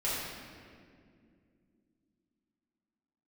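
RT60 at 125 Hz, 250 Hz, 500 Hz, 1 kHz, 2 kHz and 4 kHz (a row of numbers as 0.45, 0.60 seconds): 3.2, 4.0, 2.8, 1.8, 1.8, 1.4 seconds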